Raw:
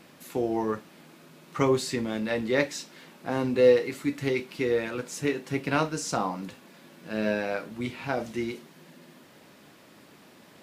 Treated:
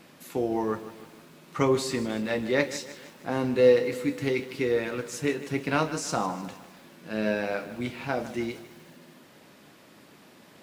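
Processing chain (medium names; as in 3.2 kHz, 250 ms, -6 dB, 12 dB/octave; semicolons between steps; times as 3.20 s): bit-crushed delay 154 ms, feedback 55%, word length 8-bit, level -14 dB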